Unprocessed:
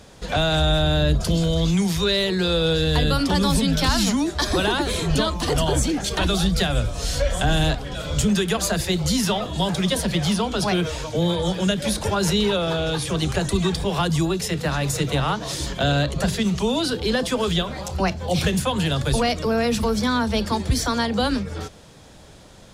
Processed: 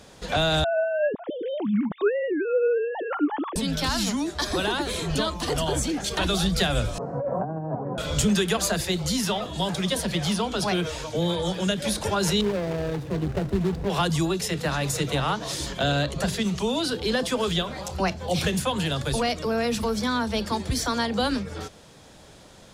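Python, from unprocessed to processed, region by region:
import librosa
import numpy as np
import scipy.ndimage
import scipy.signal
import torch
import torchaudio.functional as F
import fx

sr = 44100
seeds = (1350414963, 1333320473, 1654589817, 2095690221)

y = fx.chain(x, sr, fx.sine_speech(),
    fx.lowpass(hz=1300.0, slope=12), at=(0.64, 3.56))
y = fx.chain(y, sr, fx.ellip_bandpass(low_hz=130.0, high_hz=1000.0, order=3, stop_db=50),
    fx.over_compress(threshold_db=-28.0, ratio=-1.0), at=(6.98, 7.98))
y = fx.chain(y, sr, fx.median_filter(points=41),
    fx.resample_linear(factor=2), at=(12.41, 13.9))
y = fx.low_shelf(y, sr, hz=130.0, db=-6.0)
y = fx.rider(y, sr, range_db=10, speed_s=2.0)
y = y * librosa.db_to_amplitude(-3.0)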